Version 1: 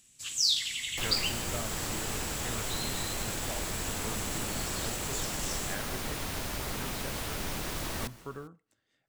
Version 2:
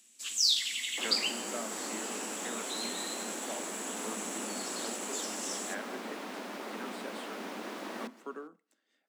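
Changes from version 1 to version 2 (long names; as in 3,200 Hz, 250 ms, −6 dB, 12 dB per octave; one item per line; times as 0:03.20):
second sound: add low-pass filter 1,500 Hz 6 dB per octave
master: add Butterworth high-pass 200 Hz 72 dB per octave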